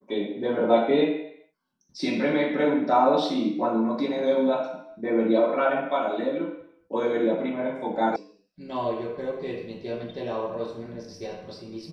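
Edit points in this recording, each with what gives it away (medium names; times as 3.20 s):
8.16 s: sound stops dead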